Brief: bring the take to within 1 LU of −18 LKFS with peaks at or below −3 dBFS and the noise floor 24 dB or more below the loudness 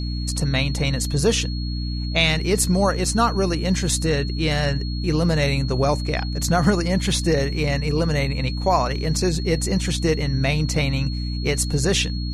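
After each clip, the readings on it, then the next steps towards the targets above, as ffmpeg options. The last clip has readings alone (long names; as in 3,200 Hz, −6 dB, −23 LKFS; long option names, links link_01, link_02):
mains hum 60 Hz; hum harmonics up to 300 Hz; level of the hum −23 dBFS; interfering tone 4,300 Hz; level of the tone −35 dBFS; integrated loudness −21.5 LKFS; sample peak −4.5 dBFS; target loudness −18.0 LKFS
→ -af "bandreject=frequency=60:width_type=h:width=4,bandreject=frequency=120:width_type=h:width=4,bandreject=frequency=180:width_type=h:width=4,bandreject=frequency=240:width_type=h:width=4,bandreject=frequency=300:width_type=h:width=4"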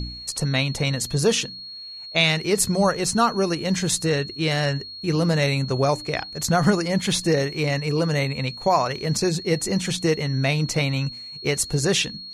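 mains hum none found; interfering tone 4,300 Hz; level of the tone −35 dBFS
→ -af "bandreject=frequency=4300:width=30"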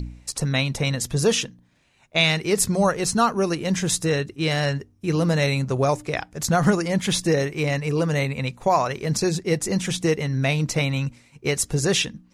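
interfering tone none found; integrated loudness −22.5 LKFS; sample peak −5.5 dBFS; target loudness −18.0 LKFS
→ -af "volume=4.5dB,alimiter=limit=-3dB:level=0:latency=1"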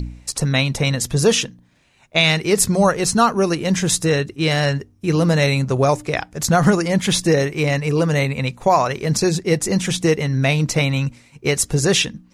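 integrated loudness −18.5 LKFS; sample peak −3.0 dBFS; background noise floor −54 dBFS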